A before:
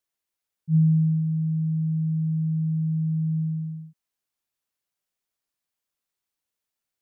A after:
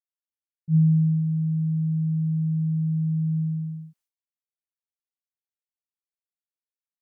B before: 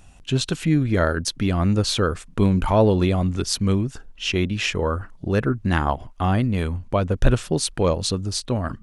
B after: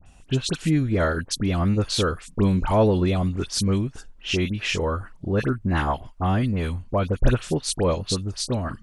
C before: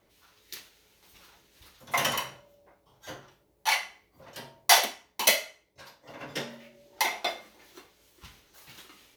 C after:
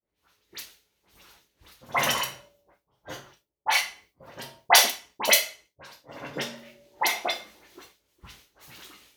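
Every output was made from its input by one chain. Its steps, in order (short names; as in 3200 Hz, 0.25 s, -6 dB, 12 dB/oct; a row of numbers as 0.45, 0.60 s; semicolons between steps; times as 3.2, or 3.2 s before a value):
expander -53 dBFS; dispersion highs, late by 62 ms, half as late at 2200 Hz; match loudness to -24 LUFS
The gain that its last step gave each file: +0.5, -2.0, +3.0 dB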